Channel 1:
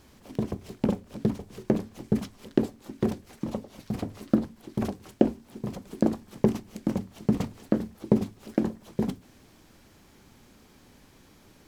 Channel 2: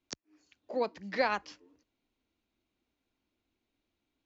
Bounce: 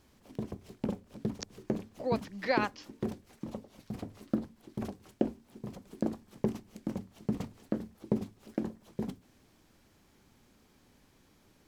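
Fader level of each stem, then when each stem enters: -8.5, -0.5 dB; 0.00, 1.30 s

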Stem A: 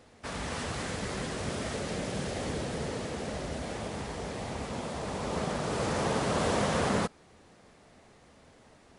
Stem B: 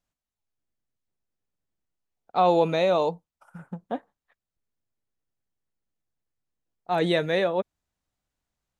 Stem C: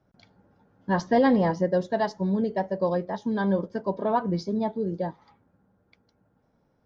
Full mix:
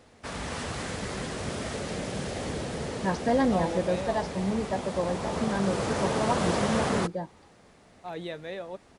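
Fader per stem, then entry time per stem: +1.0, -13.5, -4.0 dB; 0.00, 1.15, 2.15 s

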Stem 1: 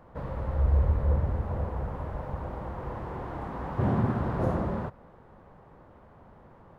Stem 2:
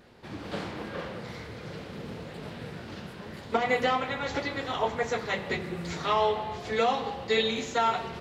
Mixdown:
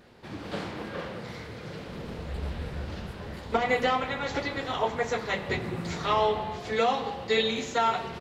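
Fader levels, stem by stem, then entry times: -12.0, +0.5 dB; 1.70, 0.00 s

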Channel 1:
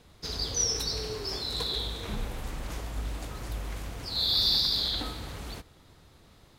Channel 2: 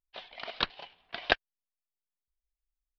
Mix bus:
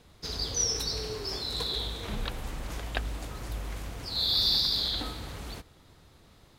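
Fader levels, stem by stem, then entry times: -0.5, -8.5 dB; 0.00, 1.65 s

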